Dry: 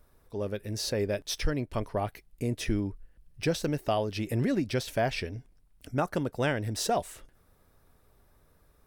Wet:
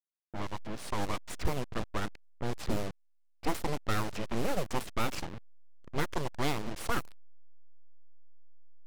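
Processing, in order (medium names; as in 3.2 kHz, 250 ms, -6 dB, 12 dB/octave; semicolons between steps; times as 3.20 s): send-on-delta sampling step -33 dBFS; level-controlled noise filter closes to 900 Hz, open at -23.5 dBFS; full-wave rectifier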